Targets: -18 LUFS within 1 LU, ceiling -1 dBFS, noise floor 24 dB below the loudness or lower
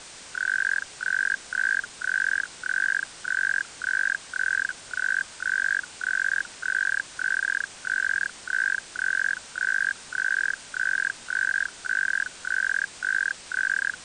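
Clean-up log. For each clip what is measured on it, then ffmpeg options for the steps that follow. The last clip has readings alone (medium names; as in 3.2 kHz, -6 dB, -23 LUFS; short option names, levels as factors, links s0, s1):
noise floor -44 dBFS; noise floor target -50 dBFS; loudness -26.0 LUFS; peak level -13.0 dBFS; loudness target -18.0 LUFS
-> -af "afftdn=nr=6:nf=-44"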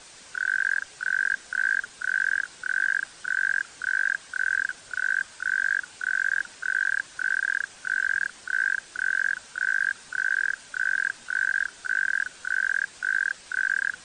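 noise floor -49 dBFS; noise floor target -50 dBFS
-> -af "afftdn=nr=6:nf=-49"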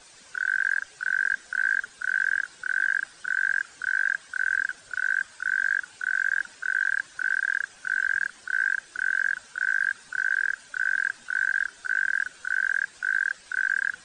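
noise floor -52 dBFS; loudness -26.0 LUFS; peak level -13.5 dBFS; loudness target -18.0 LUFS
-> -af "volume=2.51"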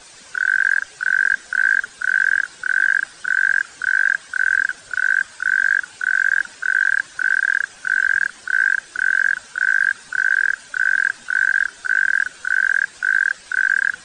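loudness -18.0 LUFS; peak level -5.5 dBFS; noise floor -44 dBFS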